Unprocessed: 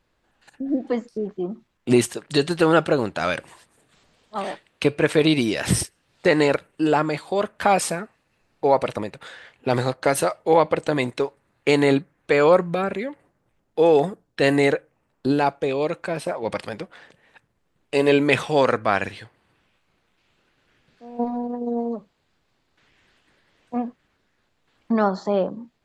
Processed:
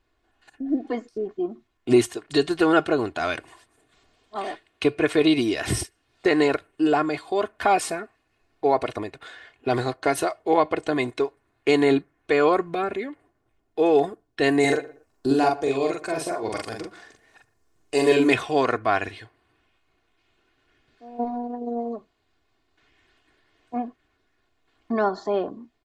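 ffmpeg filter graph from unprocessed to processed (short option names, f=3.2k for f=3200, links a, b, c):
-filter_complex "[0:a]asettb=1/sr,asplit=3[a][b][c];[a]atrim=end=14.604[d];[b]atrim=start=14.6:end=18.33,asetpts=PTS-STARTPTS,afade=t=in:d=0.004:c=qsin,afade=t=out:st=3.726:d=0.004:c=qsin,highshelf=f=4.4k:t=q:w=1.5:g=8,asplit=2[e][f];[f]adelay=44,volume=-3dB[g];[e][g]amix=inputs=2:normalize=0,atrim=end_sample=164493,asplit=2[h][i];[i]adelay=117,lowpass=f=1.9k:p=1,volume=-18.5dB,asplit=2[j][k];[k]adelay=117,lowpass=f=1.9k:p=1,volume=0.23[l];[h][j][l]amix=inputs=3:normalize=0,atrim=end_sample=164493[m];[c]atrim=start=18.326[n];[d][m]acrossfade=d=0.004:c1=hsin:c2=qsin[o];[o][n]acrossfade=d=0.004:c1=qsin:c2=hsin,highshelf=f=6.2k:g=-5,aecho=1:1:2.8:0.64,volume=-3dB"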